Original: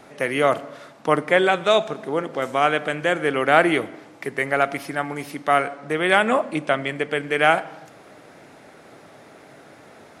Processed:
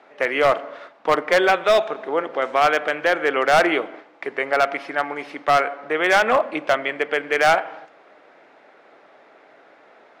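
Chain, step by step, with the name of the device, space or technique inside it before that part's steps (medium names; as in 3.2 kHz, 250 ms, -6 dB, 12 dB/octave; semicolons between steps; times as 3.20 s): 3.73–4.55 s: dynamic bell 1.9 kHz, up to -7 dB, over -39 dBFS, Q 4.1; walkie-talkie (band-pass 430–3000 Hz; hard clipper -14 dBFS, distortion -12 dB; gate -43 dBFS, range -6 dB); trim +4 dB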